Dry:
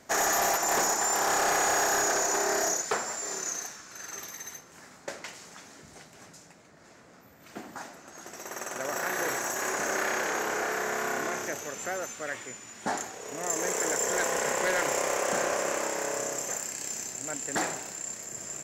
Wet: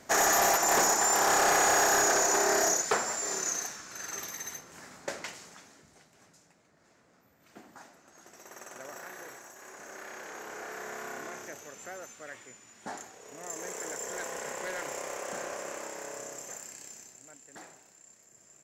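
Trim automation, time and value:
5.23 s +1.5 dB
5.94 s -10 dB
8.76 s -10 dB
9.55 s -19 dB
10.87 s -9.5 dB
16.73 s -9.5 dB
17.45 s -19.5 dB

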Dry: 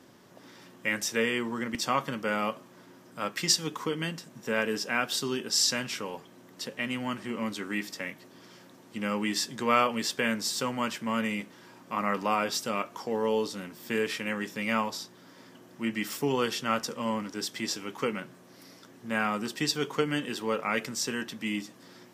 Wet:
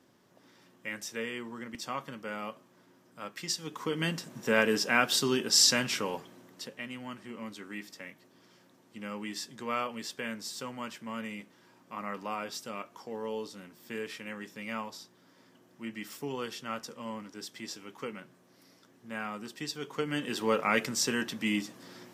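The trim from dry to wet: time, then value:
3.56 s -9 dB
4.11 s +3 dB
6.14 s +3 dB
6.89 s -9 dB
19.81 s -9 dB
20.43 s +2 dB

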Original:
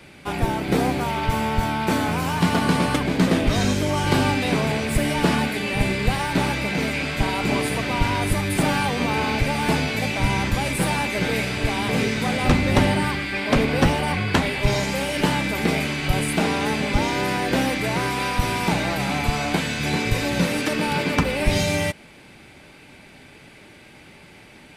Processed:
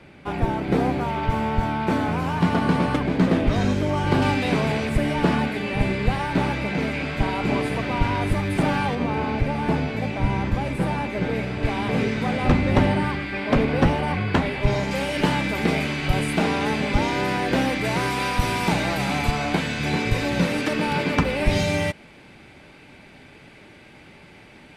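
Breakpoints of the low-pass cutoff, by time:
low-pass 6 dB/octave
1.7 kHz
from 4.22 s 3.9 kHz
from 4.89 s 2 kHz
from 8.95 s 1 kHz
from 11.63 s 1.8 kHz
from 14.91 s 4.2 kHz
from 17.85 s 10 kHz
from 19.31 s 3.9 kHz

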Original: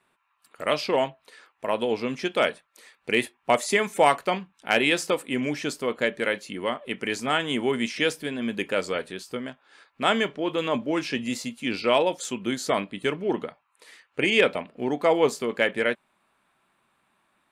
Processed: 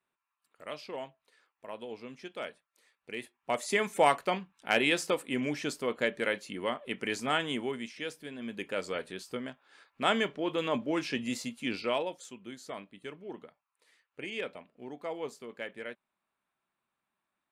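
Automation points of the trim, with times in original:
3.18 s -16.5 dB
3.82 s -5 dB
7.44 s -5 dB
7.94 s -15 dB
9.19 s -5 dB
11.65 s -5 dB
12.38 s -17 dB

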